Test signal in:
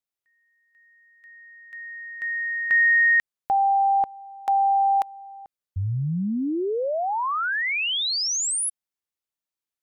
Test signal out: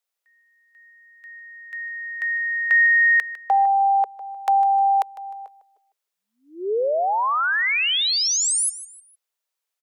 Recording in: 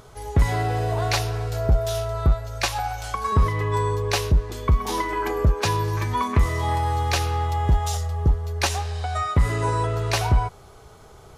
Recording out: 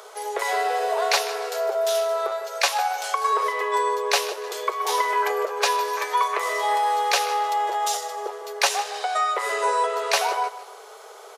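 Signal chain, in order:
Butterworth high-pass 410 Hz 72 dB per octave
in parallel at −2 dB: downward compressor, threshold −35 dBFS
on the sum: repeating echo 153 ms, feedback 35%, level −15 dB
level +2 dB

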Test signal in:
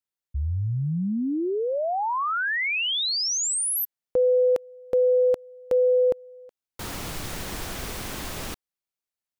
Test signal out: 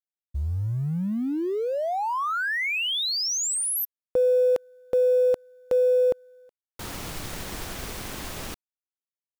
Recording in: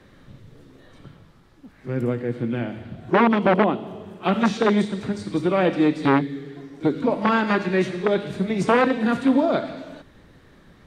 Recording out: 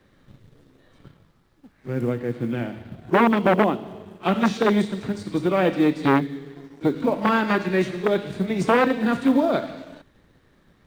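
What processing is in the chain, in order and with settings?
mu-law and A-law mismatch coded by A

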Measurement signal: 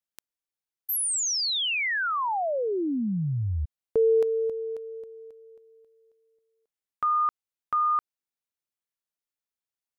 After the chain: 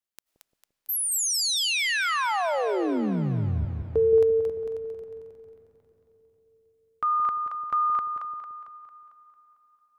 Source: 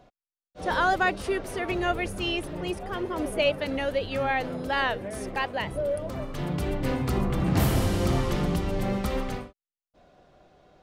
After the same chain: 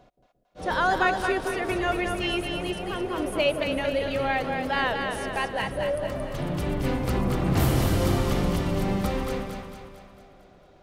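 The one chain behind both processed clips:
echo with a time of its own for lows and highs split 590 Hz, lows 173 ms, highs 225 ms, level −5 dB
comb and all-pass reverb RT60 4.7 s, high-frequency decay 0.8×, pre-delay 60 ms, DRR 19 dB

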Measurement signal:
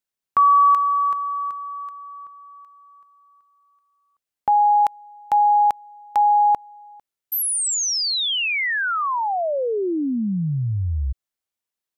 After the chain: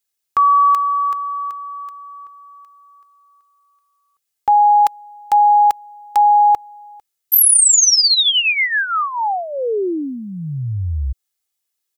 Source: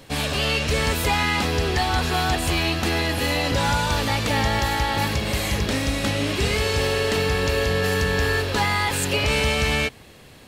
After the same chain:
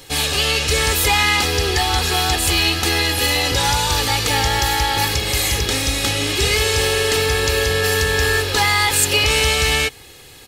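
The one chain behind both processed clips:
high-shelf EQ 2,800 Hz +11 dB
comb filter 2.4 ms, depth 54%

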